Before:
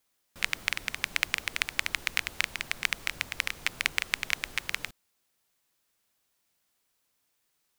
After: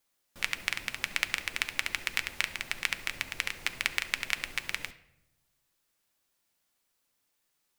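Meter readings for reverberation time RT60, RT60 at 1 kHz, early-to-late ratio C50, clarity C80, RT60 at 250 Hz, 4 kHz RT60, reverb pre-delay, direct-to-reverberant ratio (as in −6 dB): 0.90 s, 0.75 s, 14.0 dB, 17.0 dB, 1.2 s, 0.55 s, 3 ms, 9.0 dB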